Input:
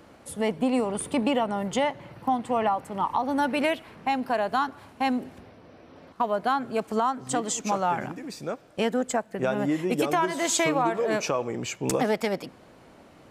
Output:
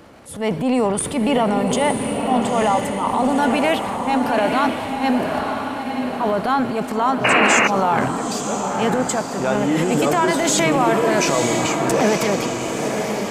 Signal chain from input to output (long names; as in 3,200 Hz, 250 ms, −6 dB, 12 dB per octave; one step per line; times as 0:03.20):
transient designer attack −7 dB, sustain +8 dB
feedback delay with all-pass diffusion 935 ms, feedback 50%, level −4 dB
sound drawn into the spectrogram noise, 0:07.24–0:07.68, 290–2,900 Hz −22 dBFS
level +6.5 dB